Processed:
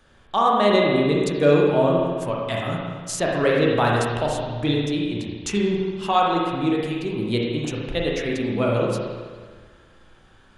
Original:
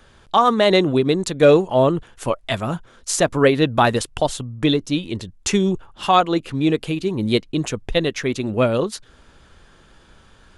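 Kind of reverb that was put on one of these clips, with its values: spring tank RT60 1.6 s, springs 34/53 ms, chirp 50 ms, DRR -3 dB; gain -7 dB

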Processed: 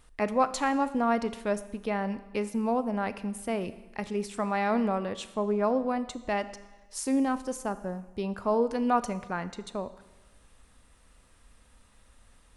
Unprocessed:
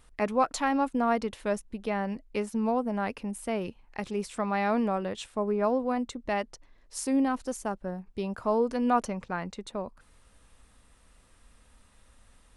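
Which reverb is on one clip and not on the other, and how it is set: Schroeder reverb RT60 1.1 s, combs from 27 ms, DRR 13.5 dB

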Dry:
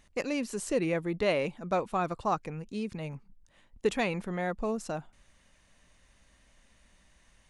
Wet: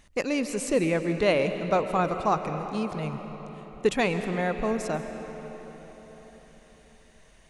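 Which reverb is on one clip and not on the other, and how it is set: digital reverb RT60 4.8 s, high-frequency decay 0.65×, pre-delay 95 ms, DRR 7.5 dB; gain +4.5 dB

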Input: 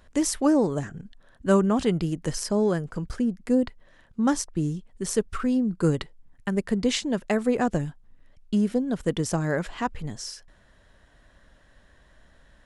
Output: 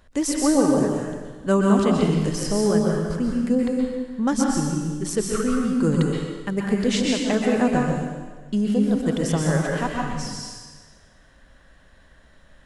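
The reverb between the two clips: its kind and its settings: plate-style reverb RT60 1.4 s, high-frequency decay 0.95×, pre-delay 0.11 s, DRR -2 dB

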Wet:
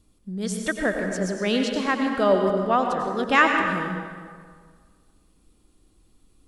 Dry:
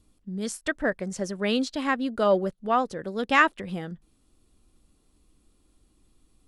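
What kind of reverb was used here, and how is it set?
plate-style reverb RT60 1.8 s, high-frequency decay 0.65×, pre-delay 80 ms, DRR 3 dB; gain +1.5 dB

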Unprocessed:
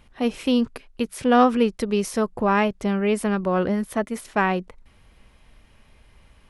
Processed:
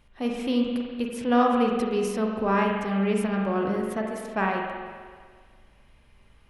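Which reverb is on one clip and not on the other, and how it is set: spring tank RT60 1.7 s, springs 41/46 ms, chirp 30 ms, DRR 0 dB; gain -6.5 dB

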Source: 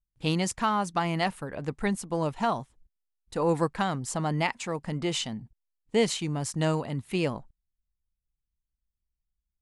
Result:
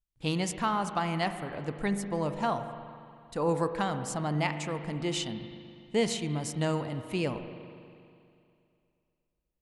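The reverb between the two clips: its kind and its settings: spring tank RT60 2.5 s, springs 40/60 ms, chirp 55 ms, DRR 8.5 dB; gain -3 dB

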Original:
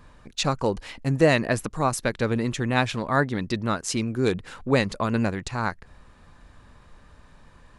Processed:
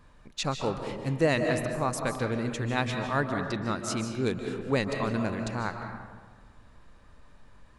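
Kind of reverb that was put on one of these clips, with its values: digital reverb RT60 1.5 s, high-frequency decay 0.45×, pre-delay 0.11 s, DRR 4.5 dB; gain -6 dB

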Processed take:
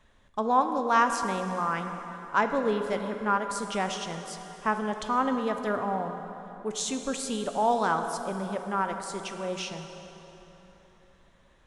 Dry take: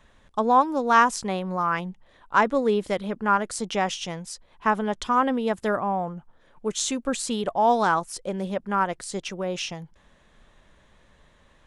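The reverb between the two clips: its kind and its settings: plate-style reverb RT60 3.8 s, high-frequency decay 0.7×, DRR 6 dB; gain -5 dB

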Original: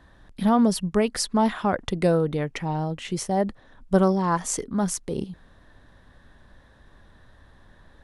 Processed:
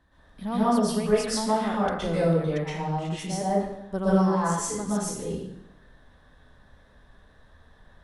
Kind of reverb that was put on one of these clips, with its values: plate-style reverb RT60 0.82 s, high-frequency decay 0.8×, pre-delay 0.105 s, DRR -9.5 dB; gain -11.5 dB

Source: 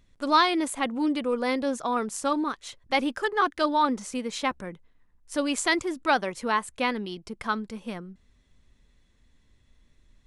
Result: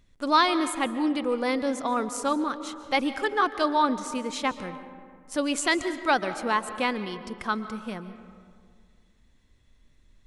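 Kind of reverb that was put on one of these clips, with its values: digital reverb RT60 2.1 s, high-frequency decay 0.45×, pre-delay 0.1 s, DRR 11.5 dB

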